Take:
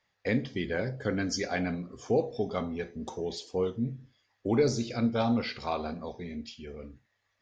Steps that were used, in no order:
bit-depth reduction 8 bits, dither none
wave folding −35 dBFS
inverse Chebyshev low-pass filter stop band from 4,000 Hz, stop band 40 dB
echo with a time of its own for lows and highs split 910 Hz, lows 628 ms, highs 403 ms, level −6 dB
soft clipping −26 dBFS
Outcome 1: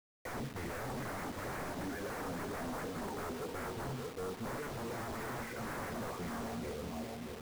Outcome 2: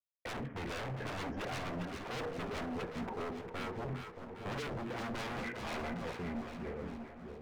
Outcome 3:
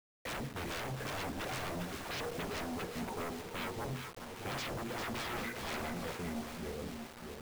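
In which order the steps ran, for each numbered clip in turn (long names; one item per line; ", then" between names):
soft clipping, then echo with a time of its own for lows and highs, then wave folding, then inverse Chebyshev low-pass filter, then bit-depth reduction
bit-depth reduction, then inverse Chebyshev low-pass filter, then soft clipping, then wave folding, then echo with a time of its own for lows and highs
inverse Chebyshev low-pass filter, then wave folding, then soft clipping, then echo with a time of its own for lows and highs, then bit-depth reduction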